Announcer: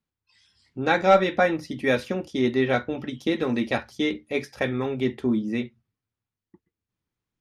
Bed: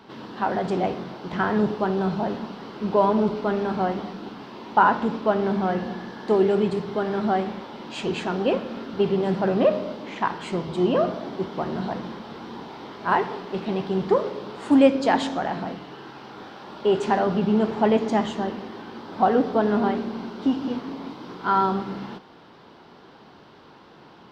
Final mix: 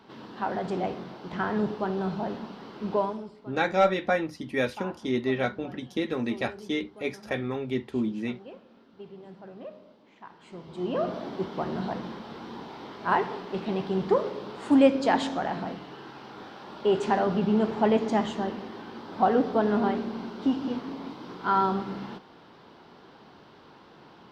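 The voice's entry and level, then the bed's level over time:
2.70 s, -4.5 dB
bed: 2.97 s -5.5 dB
3.32 s -23 dB
10.23 s -23 dB
11.17 s -3 dB

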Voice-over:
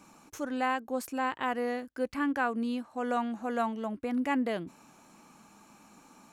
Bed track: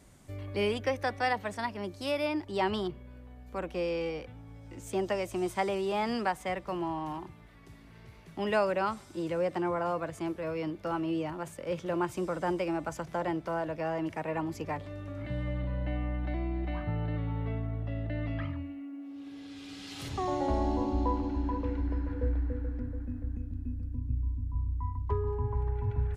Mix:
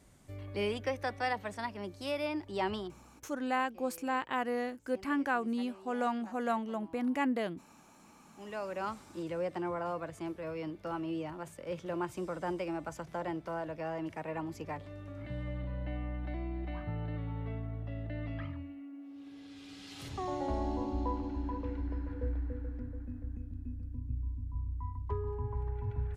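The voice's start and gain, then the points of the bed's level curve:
2.90 s, -2.0 dB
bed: 2.71 s -4 dB
3.38 s -22.5 dB
8.14 s -22.5 dB
8.91 s -5 dB

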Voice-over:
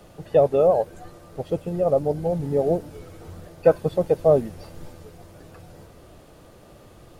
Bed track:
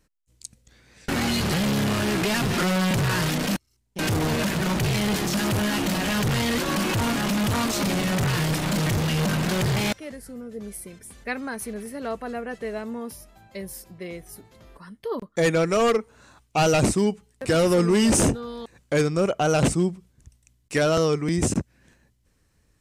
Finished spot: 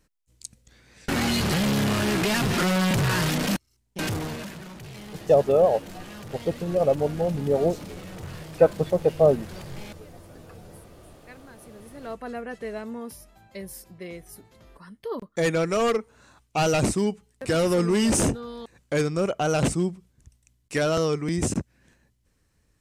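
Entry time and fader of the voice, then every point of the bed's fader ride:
4.95 s, -1.0 dB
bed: 3.91 s 0 dB
4.71 s -18 dB
11.60 s -18 dB
12.24 s -2.5 dB

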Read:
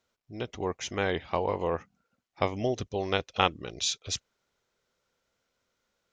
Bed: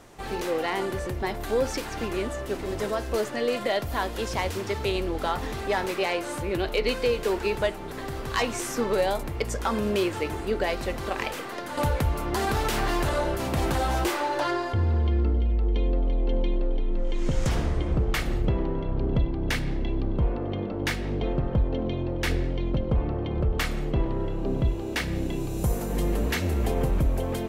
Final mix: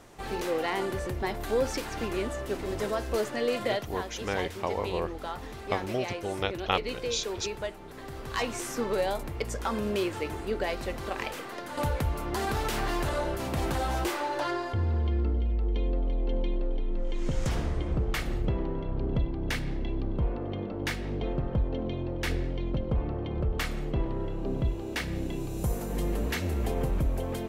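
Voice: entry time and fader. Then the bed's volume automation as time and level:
3.30 s, -2.5 dB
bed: 3.66 s -2 dB
3.94 s -9 dB
7.90 s -9 dB
8.47 s -4 dB

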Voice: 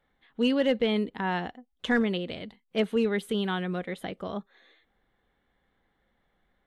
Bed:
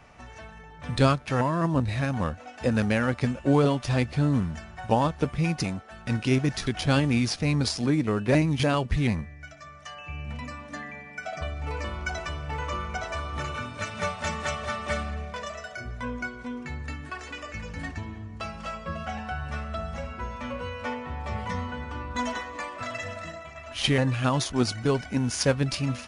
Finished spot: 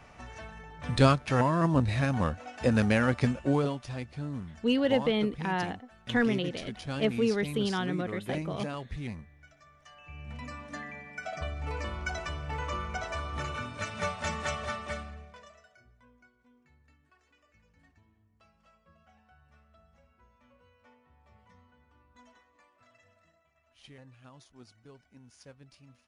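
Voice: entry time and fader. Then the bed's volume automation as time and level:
4.25 s, -1.5 dB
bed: 3.28 s -0.5 dB
3.94 s -13 dB
9.89 s -13 dB
10.55 s -3 dB
14.66 s -3 dB
16.09 s -29 dB

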